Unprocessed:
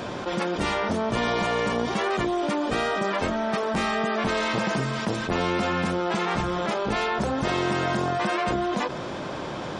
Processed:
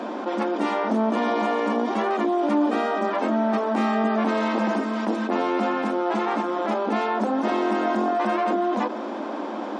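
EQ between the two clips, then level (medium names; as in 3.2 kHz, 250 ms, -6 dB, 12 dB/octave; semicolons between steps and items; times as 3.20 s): rippled Chebyshev high-pass 210 Hz, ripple 6 dB; tilt EQ -2.5 dB/octave; +3.5 dB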